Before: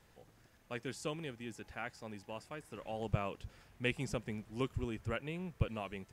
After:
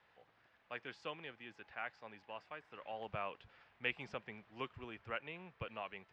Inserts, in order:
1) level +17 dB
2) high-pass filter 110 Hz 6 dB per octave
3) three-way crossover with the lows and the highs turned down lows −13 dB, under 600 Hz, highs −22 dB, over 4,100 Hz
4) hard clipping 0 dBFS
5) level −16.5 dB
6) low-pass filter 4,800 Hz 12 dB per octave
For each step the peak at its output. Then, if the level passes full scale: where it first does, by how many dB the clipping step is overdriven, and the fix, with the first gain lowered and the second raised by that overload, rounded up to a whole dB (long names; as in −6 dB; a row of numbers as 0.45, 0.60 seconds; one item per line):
−1.0, −1.5, −5.0, −5.0, −21.5, −22.0 dBFS
no step passes full scale